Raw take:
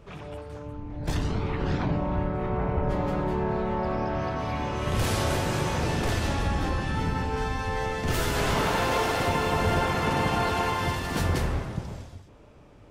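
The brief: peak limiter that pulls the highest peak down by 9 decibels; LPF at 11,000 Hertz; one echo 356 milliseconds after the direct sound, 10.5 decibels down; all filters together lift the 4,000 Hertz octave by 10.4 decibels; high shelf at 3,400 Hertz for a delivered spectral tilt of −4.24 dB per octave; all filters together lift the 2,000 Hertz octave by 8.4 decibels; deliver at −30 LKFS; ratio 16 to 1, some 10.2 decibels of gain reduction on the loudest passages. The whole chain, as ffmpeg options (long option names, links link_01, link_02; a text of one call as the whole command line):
ffmpeg -i in.wav -af "lowpass=11000,equalizer=frequency=2000:width_type=o:gain=7,highshelf=frequency=3400:gain=5,equalizer=frequency=4000:width_type=o:gain=7.5,acompressor=threshold=-28dB:ratio=16,alimiter=level_in=4dB:limit=-24dB:level=0:latency=1,volume=-4dB,aecho=1:1:356:0.299,volume=6dB" out.wav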